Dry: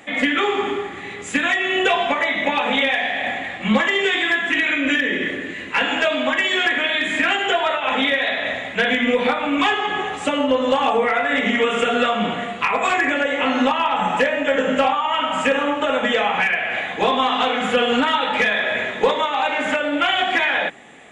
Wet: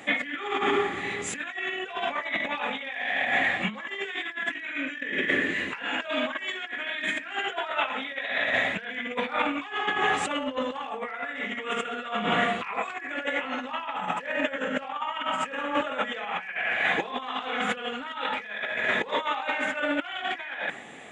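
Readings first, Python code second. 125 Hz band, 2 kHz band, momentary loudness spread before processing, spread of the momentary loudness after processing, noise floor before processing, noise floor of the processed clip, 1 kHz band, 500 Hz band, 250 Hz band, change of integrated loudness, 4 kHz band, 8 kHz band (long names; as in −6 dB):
−8.0 dB, −8.0 dB, 5 LU, 7 LU, −32 dBFS, −40 dBFS, −9.5 dB, −11.5 dB, −11.5 dB, −9.5 dB, −11.0 dB, −6.0 dB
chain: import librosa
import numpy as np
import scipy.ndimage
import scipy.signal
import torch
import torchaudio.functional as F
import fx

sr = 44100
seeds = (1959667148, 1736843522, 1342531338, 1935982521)

y = scipy.signal.sosfilt(scipy.signal.butter(2, 67.0, 'highpass', fs=sr, output='sos'), x)
y = fx.dynamic_eq(y, sr, hz=1600.0, q=0.9, threshold_db=-33.0, ratio=4.0, max_db=6)
y = fx.over_compress(y, sr, threshold_db=-22.0, ratio=-0.5)
y = F.gain(torch.from_numpy(y), -6.5).numpy()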